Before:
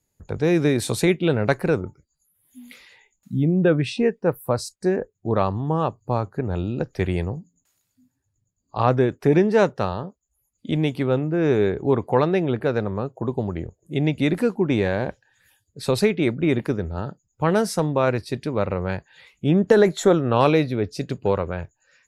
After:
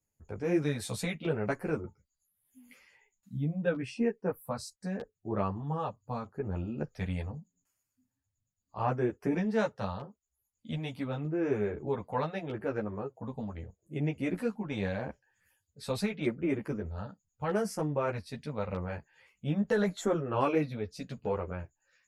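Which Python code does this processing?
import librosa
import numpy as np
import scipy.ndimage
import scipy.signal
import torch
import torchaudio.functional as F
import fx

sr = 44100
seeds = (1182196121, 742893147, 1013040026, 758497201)

y = fx.filter_lfo_notch(x, sr, shape='square', hz=0.8, low_hz=360.0, high_hz=3800.0, q=2.0)
y = fx.ensemble(y, sr)
y = y * librosa.db_to_amplitude(-7.5)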